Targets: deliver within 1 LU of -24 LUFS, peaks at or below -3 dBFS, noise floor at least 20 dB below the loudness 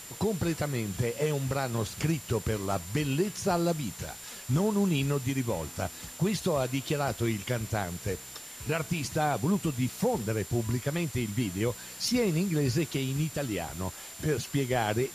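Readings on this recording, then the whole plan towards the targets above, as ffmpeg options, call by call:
steady tone 7.2 kHz; tone level -47 dBFS; noise floor -45 dBFS; noise floor target -51 dBFS; loudness -30.5 LUFS; peak level -15.5 dBFS; loudness target -24.0 LUFS
-> -af "bandreject=f=7200:w=30"
-af "afftdn=nr=6:nf=-45"
-af "volume=2.11"

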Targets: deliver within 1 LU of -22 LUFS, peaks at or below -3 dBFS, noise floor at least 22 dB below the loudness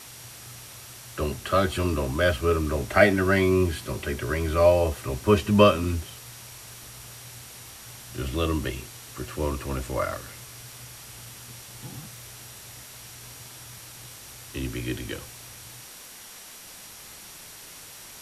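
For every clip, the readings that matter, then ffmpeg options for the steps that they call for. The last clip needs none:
steady tone 5.7 kHz; tone level -55 dBFS; noise floor -45 dBFS; noise floor target -47 dBFS; loudness -25.0 LUFS; peak level -3.5 dBFS; loudness target -22.0 LUFS
-> -af "bandreject=f=5700:w=30"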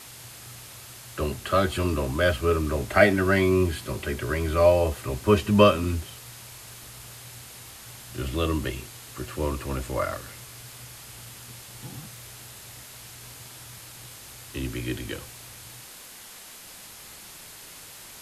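steady tone not found; noise floor -45 dBFS; noise floor target -47 dBFS
-> -af "afftdn=nr=6:nf=-45"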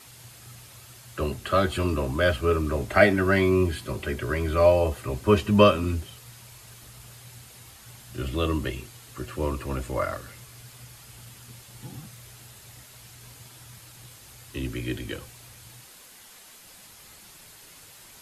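noise floor -50 dBFS; loudness -24.5 LUFS; peak level -3.5 dBFS; loudness target -22.0 LUFS
-> -af "volume=1.33,alimiter=limit=0.708:level=0:latency=1"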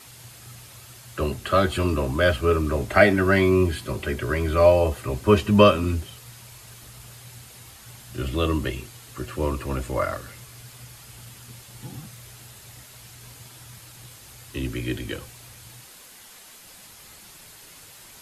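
loudness -22.5 LUFS; peak level -3.0 dBFS; noise floor -47 dBFS

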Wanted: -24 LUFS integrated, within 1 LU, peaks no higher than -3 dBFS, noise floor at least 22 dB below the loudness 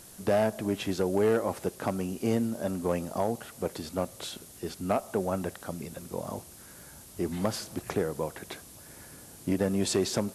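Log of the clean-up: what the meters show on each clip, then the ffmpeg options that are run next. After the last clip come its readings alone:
noise floor -50 dBFS; noise floor target -53 dBFS; loudness -31.0 LUFS; peak level -16.5 dBFS; loudness target -24.0 LUFS
-> -af "afftdn=nr=6:nf=-50"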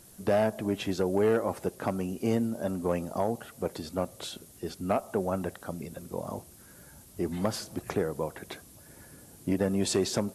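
noise floor -53 dBFS; loudness -31.0 LUFS; peak level -16.5 dBFS; loudness target -24.0 LUFS
-> -af "volume=2.24"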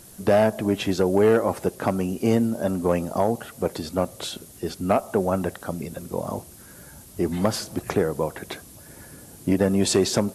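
loudness -24.0 LUFS; peak level -9.5 dBFS; noise floor -46 dBFS

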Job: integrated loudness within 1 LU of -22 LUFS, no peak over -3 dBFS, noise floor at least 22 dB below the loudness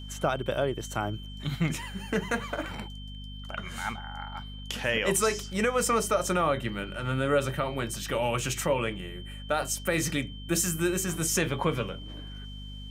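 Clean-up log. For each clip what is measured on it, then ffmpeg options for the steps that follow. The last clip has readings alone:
hum 50 Hz; highest harmonic 250 Hz; hum level -39 dBFS; steady tone 3.1 kHz; tone level -46 dBFS; loudness -29.0 LUFS; peak level -13.0 dBFS; loudness target -22.0 LUFS
-> -af "bandreject=f=50:t=h:w=6,bandreject=f=100:t=h:w=6,bandreject=f=150:t=h:w=6,bandreject=f=200:t=h:w=6,bandreject=f=250:t=h:w=6"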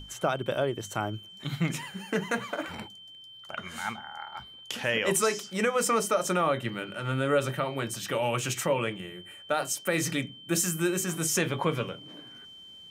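hum not found; steady tone 3.1 kHz; tone level -46 dBFS
-> -af "bandreject=f=3100:w=30"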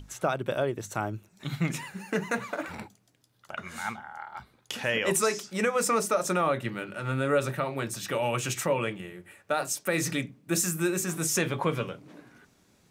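steady tone not found; loudness -29.5 LUFS; peak level -13.5 dBFS; loudness target -22.0 LUFS
-> -af "volume=2.37"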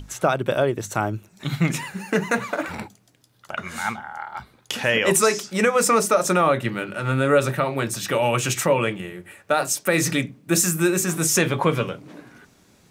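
loudness -22.0 LUFS; peak level -6.0 dBFS; noise floor -58 dBFS

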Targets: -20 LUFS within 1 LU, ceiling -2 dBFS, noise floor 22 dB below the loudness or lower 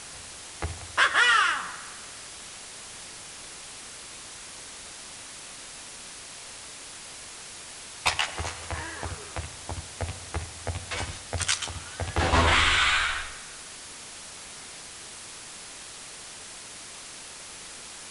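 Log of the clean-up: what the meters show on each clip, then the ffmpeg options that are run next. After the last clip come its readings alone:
noise floor -43 dBFS; noise floor target -50 dBFS; loudness -27.5 LUFS; peak level -8.5 dBFS; loudness target -20.0 LUFS
-> -af "afftdn=nr=7:nf=-43"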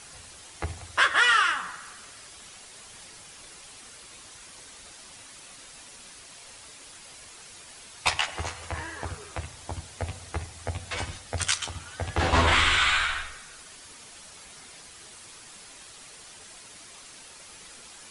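noise floor -48 dBFS; loudness -26.0 LUFS; peak level -8.5 dBFS; loudness target -20.0 LUFS
-> -af "volume=2"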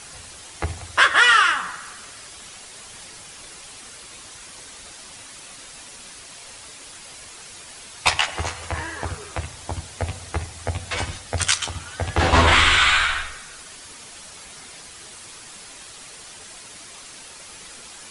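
loudness -20.0 LUFS; peak level -2.5 dBFS; noise floor -42 dBFS

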